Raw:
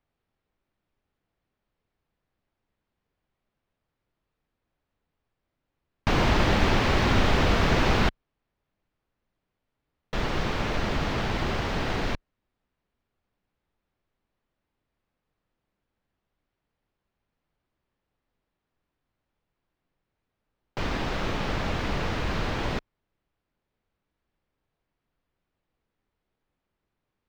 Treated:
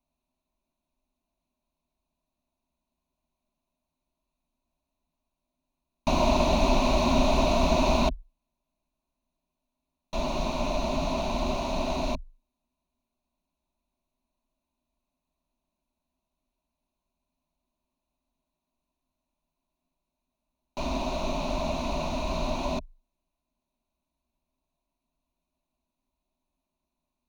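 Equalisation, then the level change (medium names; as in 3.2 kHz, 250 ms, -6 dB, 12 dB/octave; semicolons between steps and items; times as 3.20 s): rippled EQ curve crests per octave 1.5, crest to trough 10 dB; dynamic bell 600 Hz, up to +5 dB, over -38 dBFS, Q 1.7; static phaser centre 440 Hz, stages 6; 0.0 dB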